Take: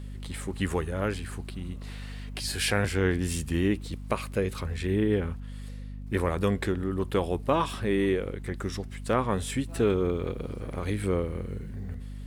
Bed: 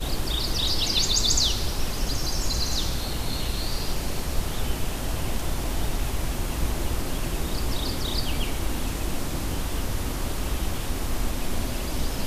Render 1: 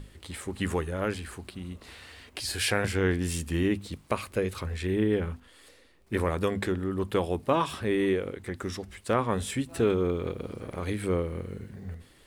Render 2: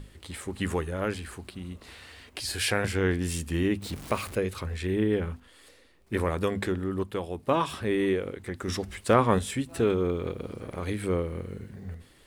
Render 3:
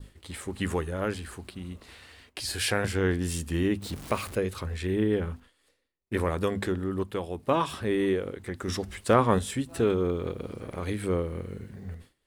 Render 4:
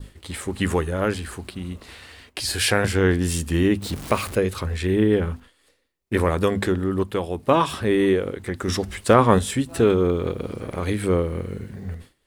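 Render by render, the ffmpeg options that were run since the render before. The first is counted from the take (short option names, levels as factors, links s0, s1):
-af "bandreject=f=50:t=h:w=6,bandreject=f=100:t=h:w=6,bandreject=f=150:t=h:w=6,bandreject=f=200:t=h:w=6,bandreject=f=250:t=h:w=6"
-filter_complex "[0:a]asettb=1/sr,asplit=3[s0][s1][s2];[s0]atrim=end=3.824[s3];[s1]atrim=start=3.82:end=4.35,asetpts=PTS-STARTPTS,afade=t=in:d=0.004:c=qsin,afade=t=out:st=0.526:d=0.004:c=qsin,aeval=exprs='val(0)+0.5*0.0133*sgn(val(0))':c=same[s4];[s2]atrim=start=4.346[s5];[s3][s4]acrossfade=d=0.004:c1=hsin:c2=qsin[s6];[s6][s5]acrossfade=d=0.004:c1=qsin:c2=hsin,asettb=1/sr,asplit=3[s7][s8][s9];[s7]atrim=end=8.684[s10];[s8]atrim=start=8.68:end=9.39,asetpts=PTS-STARTPTS,afade=t=in:d=0.004:c=qsin,afade=t=out:st=0.706:d=0.004:c=qsin,acontrast=35[s11];[s9]atrim=start=9.386[s12];[s10][s11]acrossfade=d=0.004:c1=hsin:c2=qsin[s13];[s13][s12]acrossfade=d=0.004:c1=qsin:c2=hsin,asplit=3[s14][s15][s16];[s14]atrim=end=7.032[s17];[s15]atrim=start=7.028:end=7.472,asetpts=PTS-STARTPTS,volume=0.531[s18];[s16]atrim=start=7.468[s19];[s17][s18]acrossfade=d=0.004:c1=hsin:c2=hsin[s20];[s20][s19]acrossfade=d=0.004:c1=hsin:c2=hsin"
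-af "agate=range=0.0224:threshold=0.00631:ratio=3:detection=peak,adynamicequalizer=threshold=0.00282:dfrequency=2300:dqfactor=3.1:tfrequency=2300:tqfactor=3.1:attack=5:release=100:ratio=0.375:range=2.5:mode=cutabove:tftype=bell"
-af "volume=2.24,alimiter=limit=0.891:level=0:latency=1"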